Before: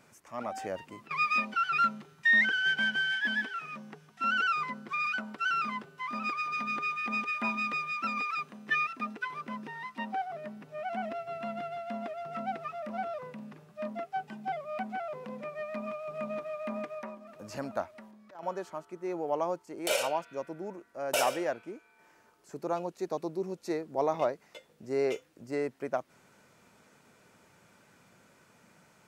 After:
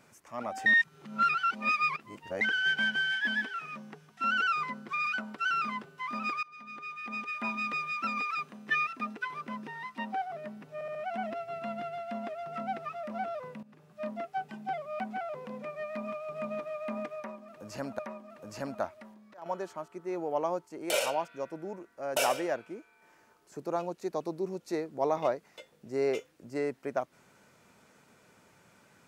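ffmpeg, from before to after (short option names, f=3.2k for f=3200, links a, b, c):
-filter_complex "[0:a]asplit=9[a][b][c][d][e][f][g][h][i];[a]atrim=end=0.662[j];[b]atrim=start=0.658:end=2.412,asetpts=PTS-STARTPTS,areverse[k];[c]atrim=start=2.408:end=6.43,asetpts=PTS-STARTPTS,afade=t=out:st=4.018:d=0.004:c=hsin:silence=0.0794328[l];[d]atrim=start=6.43:end=10.812,asetpts=PTS-STARTPTS,afade=t=in:d=1.41:silence=0.0794328[m];[e]atrim=start=10.738:end=10.812[n];[f]atrim=start=10.738:end=10.812[o];[g]atrim=start=10.738:end=13.42,asetpts=PTS-STARTPTS,afade=t=out:st=2.678:d=0.004:c=hsin:silence=0.125893[p];[h]atrim=start=13.42:end=17.782,asetpts=PTS-STARTPTS,afade=t=in:d=0.37:silence=0.125893[q];[i]atrim=start=16.958[r];[j][k]acrossfade=d=0.004:c1=hsin:c2=hsin[s];[l][m]concat=n=2:v=0:a=1[t];[s][t]acrossfade=d=0.004:c1=hsin:c2=hsin[u];[u][n]acrossfade=d=0.004:c1=hsin:c2=hsin[v];[v][o]acrossfade=d=0.004:c1=hsin:c2=hsin[w];[p][q]concat=n=2:v=0:a=1[x];[w][x]acrossfade=d=0.004:c1=hsin:c2=hsin[y];[y][r]acrossfade=d=0.004:c1=hsin:c2=hsin"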